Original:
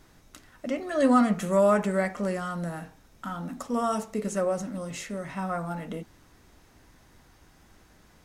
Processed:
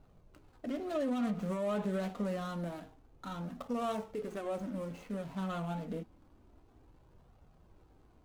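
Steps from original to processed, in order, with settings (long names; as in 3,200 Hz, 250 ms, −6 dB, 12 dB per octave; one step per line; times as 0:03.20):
running median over 25 samples
brickwall limiter −24 dBFS, peak gain reduction 12 dB
flanger 0.27 Hz, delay 1.4 ms, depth 3.5 ms, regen −45%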